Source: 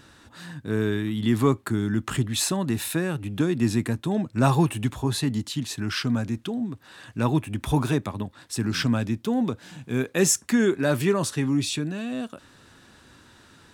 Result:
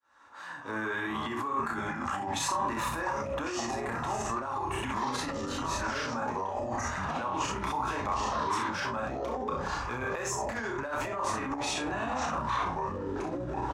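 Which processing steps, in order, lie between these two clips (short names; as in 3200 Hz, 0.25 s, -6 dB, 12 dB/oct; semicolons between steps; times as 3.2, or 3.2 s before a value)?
opening faded in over 1.38 s; three-band isolator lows -17 dB, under 500 Hz, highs -17 dB, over 2300 Hz; on a send at -4.5 dB: reverb RT60 0.30 s, pre-delay 3 ms; on the sum: echoes that change speed 0.126 s, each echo -6 st, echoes 3; in parallel at -6 dB: soft clip -23.5 dBFS, distortion -14 dB; on the sum: early reflections 31 ms -3 dB, 64 ms -5 dB; negative-ratio compressor -31 dBFS, ratio -1; limiter -26 dBFS, peak gain reduction 10.5 dB; fifteen-band EQ 160 Hz -8 dB, 1000 Hz +9 dB, 6300 Hz +11 dB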